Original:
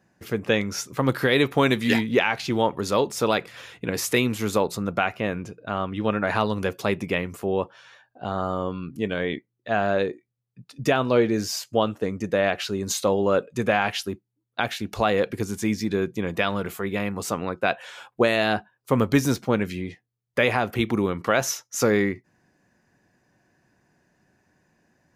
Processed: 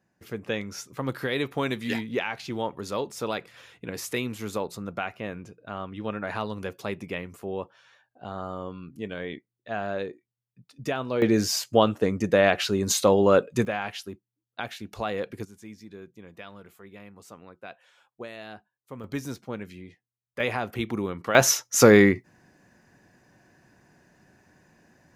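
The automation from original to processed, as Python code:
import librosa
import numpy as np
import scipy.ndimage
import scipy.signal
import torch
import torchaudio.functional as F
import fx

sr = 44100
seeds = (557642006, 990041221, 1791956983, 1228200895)

y = fx.gain(x, sr, db=fx.steps((0.0, -8.0), (11.22, 2.5), (13.65, -8.5), (15.45, -19.5), (19.04, -12.5), (20.4, -6.0), (21.35, 6.0)))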